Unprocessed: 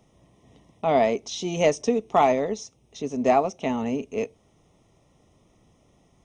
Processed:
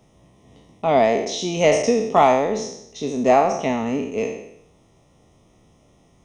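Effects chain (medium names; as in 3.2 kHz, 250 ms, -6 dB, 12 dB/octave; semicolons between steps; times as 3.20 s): spectral sustain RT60 0.76 s; trim +2.5 dB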